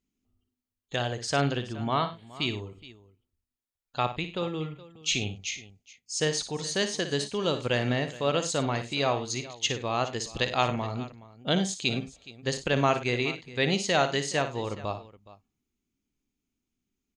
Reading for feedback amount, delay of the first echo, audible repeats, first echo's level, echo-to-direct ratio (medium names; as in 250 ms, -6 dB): no regular repeats, 57 ms, 3, -10.0 dB, -9.0 dB